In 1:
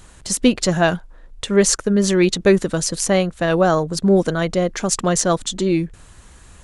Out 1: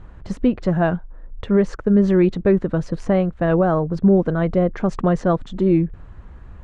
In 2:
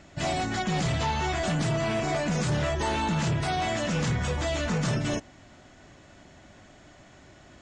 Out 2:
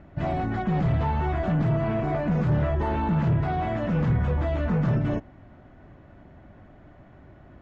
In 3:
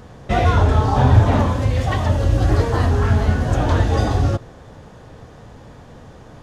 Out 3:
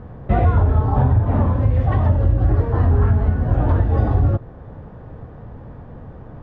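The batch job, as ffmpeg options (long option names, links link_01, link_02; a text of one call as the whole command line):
ffmpeg -i in.wav -af "lowpass=1500,lowshelf=frequency=210:gain=7,alimiter=limit=-7dB:level=0:latency=1:release=491" out.wav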